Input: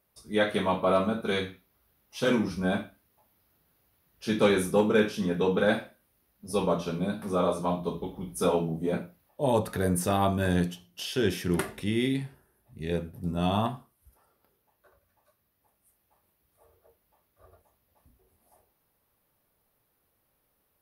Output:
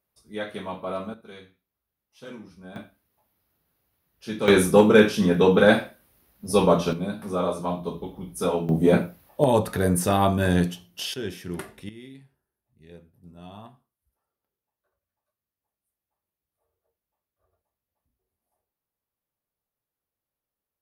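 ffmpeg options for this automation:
ffmpeg -i in.wav -af "asetnsamples=nb_out_samples=441:pad=0,asendcmd='1.14 volume volume -16dB;2.76 volume volume -4dB;4.48 volume volume 8dB;6.93 volume volume 0.5dB;8.69 volume volume 11dB;9.44 volume volume 4.5dB;11.14 volume volume -6dB;11.89 volume volume -17dB',volume=-7dB" out.wav

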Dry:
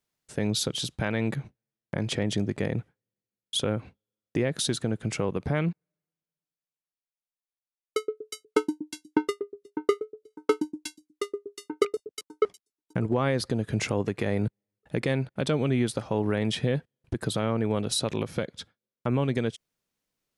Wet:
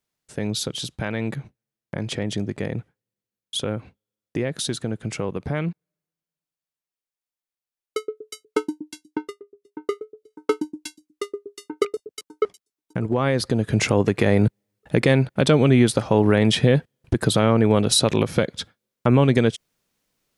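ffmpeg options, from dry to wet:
ffmpeg -i in.wav -af "volume=21dB,afade=type=out:start_time=8.85:duration=0.56:silence=0.266073,afade=type=in:start_time=9.41:duration=1.02:silence=0.237137,afade=type=in:start_time=12.99:duration=1.2:silence=0.421697" out.wav

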